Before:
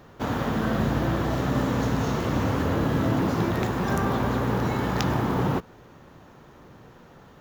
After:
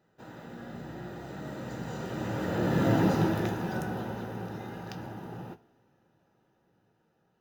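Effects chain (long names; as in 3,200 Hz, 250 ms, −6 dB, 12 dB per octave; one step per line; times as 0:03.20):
source passing by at 0:02.99, 23 m/s, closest 7.5 metres
notch comb filter 1,100 Hz
coupled-rooms reverb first 0.22 s, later 1.8 s, from −21 dB, DRR 9 dB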